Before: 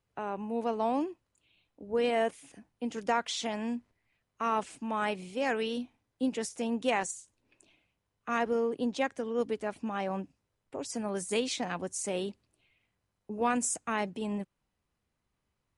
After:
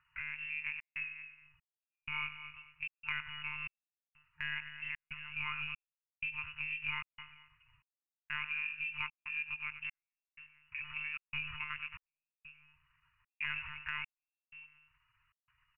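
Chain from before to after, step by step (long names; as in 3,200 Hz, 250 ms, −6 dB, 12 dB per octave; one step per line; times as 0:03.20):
stylus tracing distortion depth 0.49 ms
parametric band 950 Hz −2.5 dB
repeating echo 223 ms, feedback 18%, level −16.5 dB
surface crackle 340 per second −52 dBFS
voice inversion scrambler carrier 2,900 Hz
one-pitch LPC vocoder at 8 kHz 150 Hz
high-frequency loss of the air 340 metres
single-tap delay 94 ms −13.5 dB
downward compressor 2 to 1, threshold −43 dBFS, peak gain reduction 10 dB
brick-wall band-stop 160–900 Hz
gate pattern "xxxxx.xxxx..." 94 BPM −60 dB
level +2.5 dB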